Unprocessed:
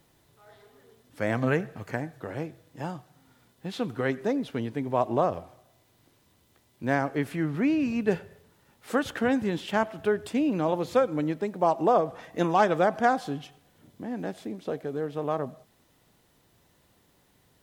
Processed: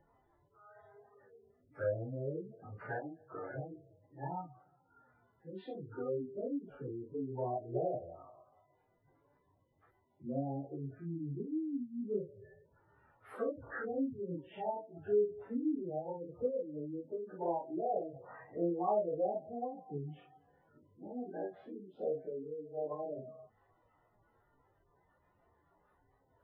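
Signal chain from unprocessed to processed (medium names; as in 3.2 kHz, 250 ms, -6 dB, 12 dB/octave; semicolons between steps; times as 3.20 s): low-pass that closes with the level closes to 510 Hz, closed at -23.5 dBFS; spectral gate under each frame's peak -15 dB strong; FFT filter 110 Hz 0 dB, 210 Hz -9 dB, 360 Hz 0 dB, 670 Hz +3 dB, 1.3 kHz +9 dB, 7.2 kHz -29 dB, 11 kHz +2 dB; in parallel at -3 dB: compression 10:1, threshold -34 dBFS, peak gain reduction 14.5 dB; on the sum: chorus voices 4, 0.14 Hz, delay 25 ms, depth 4.5 ms; plain phase-vocoder stretch 1.5×; trim -5 dB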